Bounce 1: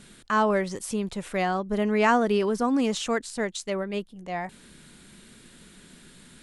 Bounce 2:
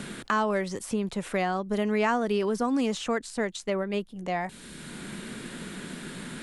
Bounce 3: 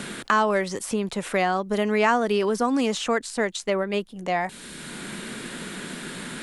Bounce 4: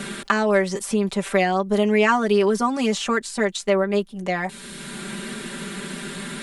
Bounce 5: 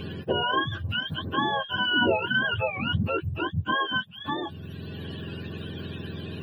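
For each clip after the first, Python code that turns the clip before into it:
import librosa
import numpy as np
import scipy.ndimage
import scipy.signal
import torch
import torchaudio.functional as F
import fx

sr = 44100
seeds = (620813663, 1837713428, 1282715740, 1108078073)

y1 = fx.band_squash(x, sr, depth_pct=70)
y1 = F.gain(torch.from_numpy(y1), -2.0).numpy()
y2 = fx.low_shelf(y1, sr, hz=240.0, db=-7.5)
y2 = F.gain(torch.from_numpy(y2), 6.0).numpy()
y3 = y2 + 0.84 * np.pad(y2, (int(5.1 * sr / 1000.0), 0))[:len(y2)]
y4 = fx.octave_mirror(y3, sr, pivot_hz=790.0)
y4 = F.gain(torch.from_numpy(y4), -4.5).numpy()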